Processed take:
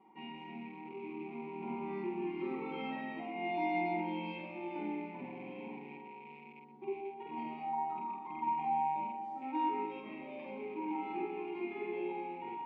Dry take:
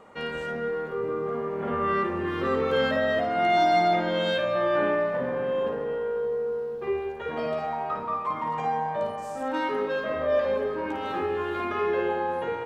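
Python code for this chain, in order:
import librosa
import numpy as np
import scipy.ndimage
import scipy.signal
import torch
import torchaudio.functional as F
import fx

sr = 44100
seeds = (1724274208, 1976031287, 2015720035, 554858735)

p1 = fx.rattle_buzz(x, sr, strikes_db=-40.0, level_db=-32.0)
p2 = fx.vowel_filter(p1, sr, vowel='u')
p3 = fx.air_absorb(p2, sr, metres=110.0)
p4 = fx.notch(p3, sr, hz=1200.0, q=6.1)
p5 = p4 + 0.94 * np.pad(p4, (int(5.3 * sr / 1000.0), 0))[:len(p4)]
y = p5 + fx.echo_multitap(p5, sr, ms=(47, 122), db=(-5.5, -12.5), dry=0)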